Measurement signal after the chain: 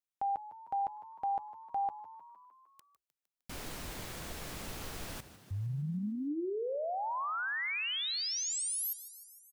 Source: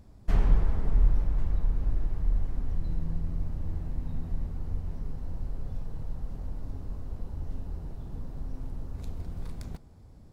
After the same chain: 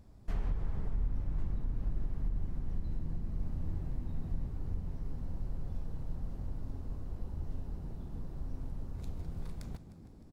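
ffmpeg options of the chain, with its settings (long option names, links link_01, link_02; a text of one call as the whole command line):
ffmpeg -i in.wav -filter_complex "[0:a]alimiter=limit=-21dB:level=0:latency=1:release=334,asplit=8[link_01][link_02][link_03][link_04][link_05][link_06][link_07][link_08];[link_02]adelay=153,afreqshift=50,volume=-15dB[link_09];[link_03]adelay=306,afreqshift=100,volume=-18.9dB[link_10];[link_04]adelay=459,afreqshift=150,volume=-22.8dB[link_11];[link_05]adelay=612,afreqshift=200,volume=-26.6dB[link_12];[link_06]adelay=765,afreqshift=250,volume=-30.5dB[link_13];[link_07]adelay=918,afreqshift=300,volume=-34.4dB[link_14];[link_08]adelay=1071,afreqshift=350,volume=-38.3dB[link_15];[link_01][link_09][link_10][link_11][link_12][link_13][link_14][link_15]amix=inputs=8:normalize=0,volume=-4dB" out.wav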